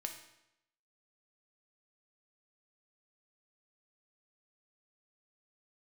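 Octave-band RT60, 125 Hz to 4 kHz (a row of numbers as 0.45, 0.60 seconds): 0.85, 0.85, 0.85, 0.85, 0.80, 0.75 seconds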